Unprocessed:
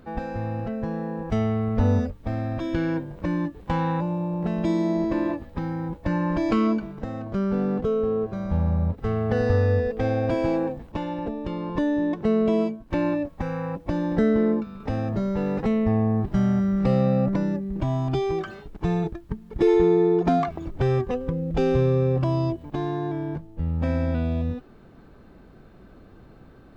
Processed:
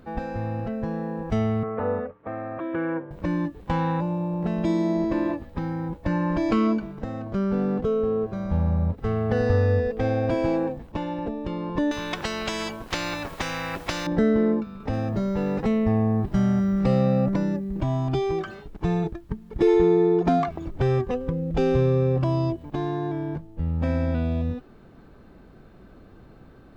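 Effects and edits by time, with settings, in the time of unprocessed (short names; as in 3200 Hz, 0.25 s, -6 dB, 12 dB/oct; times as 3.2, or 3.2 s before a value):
1.63–3.11 speaker cabinet 230–2200 Hz, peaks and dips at 240 Hz -9 dB, 470 Hz +4 dB, 1200 Hz +7 dB
11.91–14.07 spectral compressor 4:1
14.93–17.81 high shelf 4700 Hz +4.5 dB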